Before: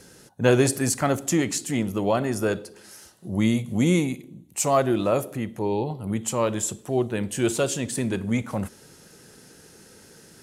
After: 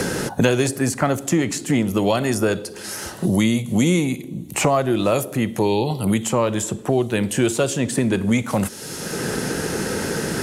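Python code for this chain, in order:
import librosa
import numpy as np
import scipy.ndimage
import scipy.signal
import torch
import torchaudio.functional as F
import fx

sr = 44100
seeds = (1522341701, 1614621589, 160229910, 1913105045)

y = fx.band_squash(x, sr, depth_pct=100)
y = y * 10.0 ** (4.0 / 20.0)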